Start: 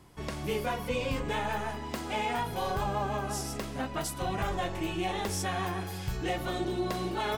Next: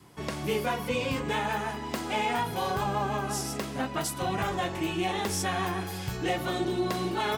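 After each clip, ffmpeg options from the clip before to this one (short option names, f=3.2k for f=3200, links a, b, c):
-af "highpass=100,adynamicequalizer=threshold=0.00562:dfrequency=590:dqfactor=2.5:tfrequency=590:tqfactor=2.5:attack=5:release=100:ratio=0.375:range=2:mode=cutabove:tftype=bell,volume=3.5dB"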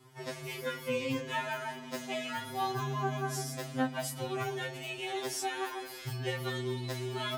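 -af "afftfilt=real='re*2.45*eq(mod(b,6),0)':imag='im*2.45*eq(mod(b,6),0)':win_size=2048:overlap=0.75,volume=-2.5dB"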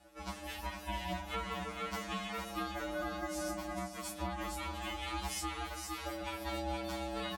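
-af "aecho=1:1:462:0.631,alimiter=level_in=1.5dB:limit=-24dB:level=0:latency=1:release=399,volume=-1.5dB,aeval=exprs='val(0)*sin(2*PI*450*n/s)':c=same"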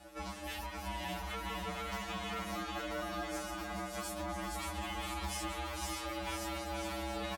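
-filter_complex "[0:a]alimiter=level_in=12dB:limit=-24dB:level=0:latency=1:release=429,volume=-12dB,asoftclip=type=tanh:threshold=-38.5dB,asplit=2[a][b];[b]aecho=0:1:580|986|1270|1469|1608:0.631|0.398|0.251|0.158|0.1[c];[a][c]amix=inputs=2:normalize=0,volume=7dB"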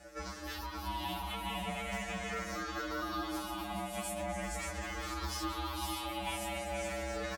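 -af "afftfilt=real='re*pow(10,10/40*sin(2*PI*(0.54*log(max(b,1)*sr/1024/100)/log(2)-(-0.42)*(pts-256)/sr)))':imag='im*pow(10,10/40*sin(2*PI*(0.54*log(max(b,1)*sr/1024/100)/log(2)-(-0.42)*(pts-256)/sr)))':win_size=1024:overlap=0.75"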